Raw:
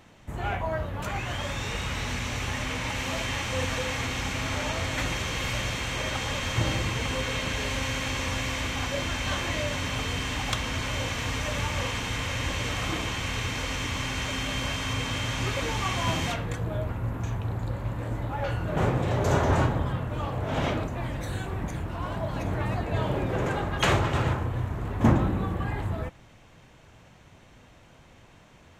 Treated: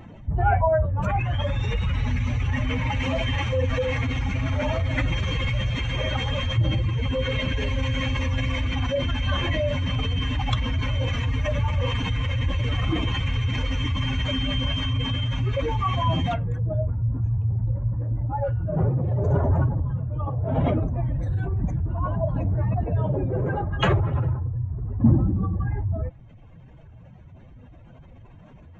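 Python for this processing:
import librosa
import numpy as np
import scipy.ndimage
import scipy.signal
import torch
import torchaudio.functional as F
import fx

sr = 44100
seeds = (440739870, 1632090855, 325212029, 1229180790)

y = fx.spec_expand(x, sr, power=2.1)
y = fx.rider(y, sr, range_db=10, speed_s=2.0)
y = y * librosa.db_to_amplitude(5.0)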